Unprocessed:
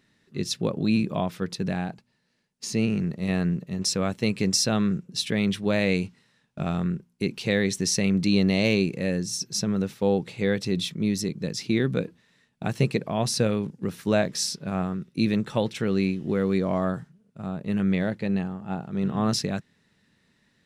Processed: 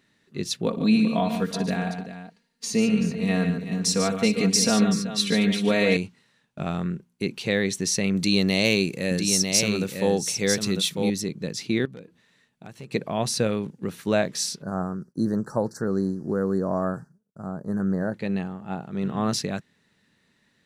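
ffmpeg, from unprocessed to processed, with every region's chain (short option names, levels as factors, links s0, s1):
-filter_complex "[0:a]asettb=1/sr,asplit=3[s0][s1][s2];[s0]atrim=end=0.664[s3];[s1]atrim=start=0.66:end=5.97,asetpts=PTS-STARTPTS,afade=t=in:d=0.004:c=qsin,afade=t=out:st=5.306:d=0.004:c=qsin,aecho=1:1:4.3:0.78,atrim=end_sample=234171,aecho=1:1:61|113|145|382:0.168|0.141|0.376|0.251,atrim=end_sample=234171[s4];[s2]atrim=start=5.966[s5];[s3][s4]acrossfade=d=0.004:c1=hsin:c2=qsin[s6];[s6][s5]acrossfade=d=0.004:c1=qsin:c2=hsin,asettb=1/sr,asplit=3[s7][s8][s9];[s7]atrim=end=8.164[s10];[s8]atrim=start=8.16:end=11.1,asetpts=PTS-STARTPTS,afade=t=in:d=0.004:c=qsin,afade=t=out:st=2.936:d=0.004:c=qsin,highshelf=f=4300:g=11,aecho=1:1:948:0.531,atrim=end_sample=129654[s11];[s9]atrim=start=11.096[s12];[s10][s11]acrossfade=d=0.004:c1=hsin:c2=qsin[s13];[s13][s12]acrossfade=d=0.004:c1=qsin:c2=hsin,asettb=1/sr,asplit=3[s14][s15][s16];[s14]atrim=end=11.854[s17];[s15]atrim=start=11.85:end=12.92,asetpts=PTS-STARTPTS,afade=t=in:d=0.004:c=qsin,afade=t=out:st=1.066:d=0.004:c=qsin,acompressor=threshold=0.00355:ratio=2:attack=3.2:release=140:knee=1:detection=peak,aeval=exprs='0.0316*(abs(mod(val(0)/0.0316+3,4)-2)-1)':c=same[s18];[s16]atrim=start=12.916[s19];[s17][s18]acrossfade=d=0.004:c1=hsin:c2=qsin[s20];[s20][s19]acrossfade=d=0.004:c1=qsin:c2=hsin,asettb=1/sr,asplit=3[s21][s22][s23];[s21]atrim=end=14.624[s24];[s22]atrim=start=14.62:end=18.14,asetpts=PTS-STARTPTS,afade=t=in:d=0.004:c=qsin,afade=t=out:st=3.516:d=0.004:c=qsin,asuperstop=centerf=2800:order=12:qfactor=0.96,agate=range=0.0224:threshold=0.00224:ratio=3:release=100:detection=peak[s25];[s23]atrim=start=18.136[s26];[s24][s25]acrossfade=d=0.004:c1=hsin:c2=qsin[s27];[s27][s26]acrossfade=d=0.004:c1=qsin:c2=hsin,lowshelf=f=170:g=-5.5,bandreject=f=5200:w=16,volume=1.12"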